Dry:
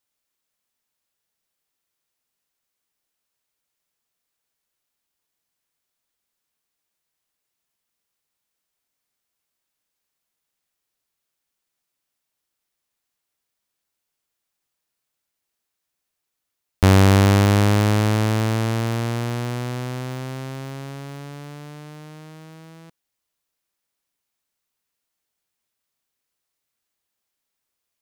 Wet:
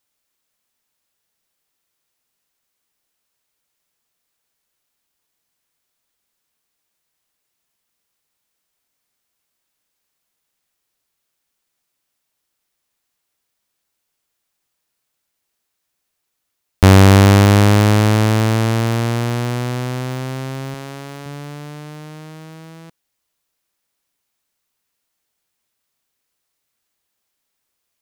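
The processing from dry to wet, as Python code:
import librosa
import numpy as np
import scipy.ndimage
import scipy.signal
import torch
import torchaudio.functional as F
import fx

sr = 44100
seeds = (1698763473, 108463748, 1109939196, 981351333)

y = fx.highpass(x, sr, hz=230.0, slope=6, at=(20.74, 21.26))
y = y * librosa.db_to_amplitude(5.5)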